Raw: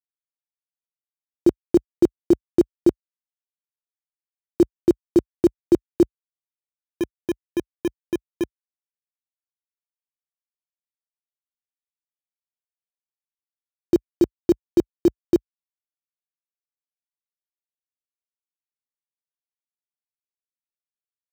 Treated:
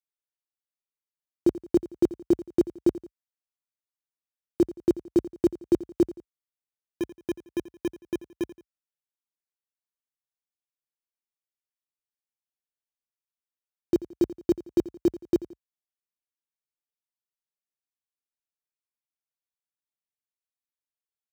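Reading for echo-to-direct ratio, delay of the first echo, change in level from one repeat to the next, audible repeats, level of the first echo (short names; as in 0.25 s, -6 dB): -16.5 dB, 86 ms, -7.5 dB, 2, -17.0 dB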